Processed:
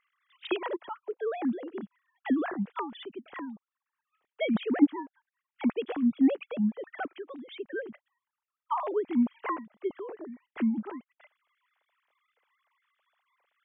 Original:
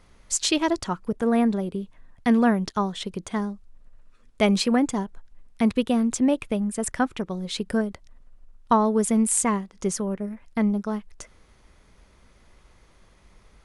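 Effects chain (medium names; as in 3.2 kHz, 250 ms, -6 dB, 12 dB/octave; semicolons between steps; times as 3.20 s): formants replaced by sine waves; trim -7 dB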